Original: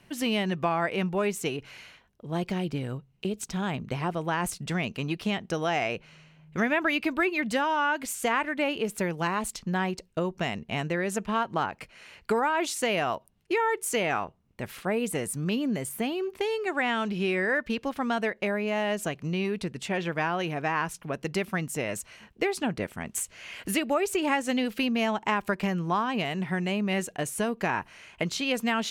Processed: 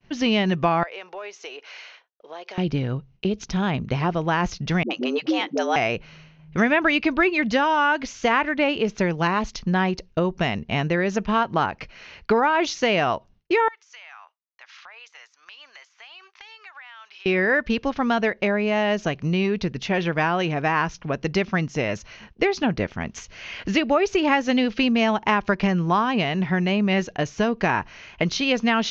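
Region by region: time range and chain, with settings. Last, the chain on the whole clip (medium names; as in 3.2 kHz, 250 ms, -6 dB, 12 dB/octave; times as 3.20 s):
0.83–2.58 s: high-pass 480 Hz 24 dB/octave + compression 3:1, threshold -41 dBFS
4.83–5.76 s: phase dispersion highs, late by 74 ms, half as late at 330 Hz + frequency shift +110 Hz
13.68–17.26 s: high-pass 1 kHz 24 dB/octave + compression, threshold -47 dBFS
whole clip: expander -52 dBFS; steep low-pass 6.4 kHz 96 dB/octave; bass shelf 64 Hz +11.5 dB; trim +6 dB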